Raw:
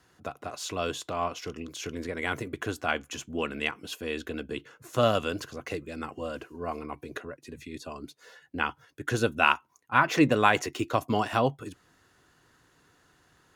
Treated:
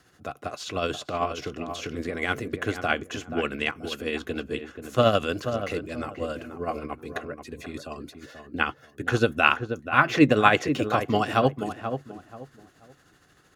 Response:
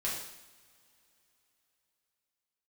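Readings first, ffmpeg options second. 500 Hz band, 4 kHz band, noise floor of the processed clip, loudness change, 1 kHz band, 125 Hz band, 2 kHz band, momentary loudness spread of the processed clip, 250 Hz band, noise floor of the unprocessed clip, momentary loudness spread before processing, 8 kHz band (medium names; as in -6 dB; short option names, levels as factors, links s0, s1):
+4.0 dB, +3.0 dB, -59 dBFS, +3.0 dB, +2.5 dB, +4.0 dB, +3.5 dB, 17 LU, +4.0 dB, -65 dBFS, 17 LU, -2.5 dB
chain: -filter_complex "[0:a]bandreject=f=950:w=6.9,tremolo=f=13:d=0.47,acrossover=split=5200[s0][s1];[s1]acompressor=threshold=0.00251:ratio=4:attack=1:release=60[s2];[s0][s2]amix=inputs=2:normalize=0,asplit=2[s3][s4];[s4]adelay=482,lowpass=f=1400:p=1,volume=0.398,asplit=2[s5][s6];[s6]adelay=482,lowpass=f=1400:p=1,volume=0.28,asplit=2[s7][s8];[s8]adelay=482,lowpass=f=1400:p=1,volume=0.28[s9];[s5][s7][s9]amix=inputs=3:normalize=0[s10];[s3][s10]amix=inputs=2:normalize=0,volume=1.88"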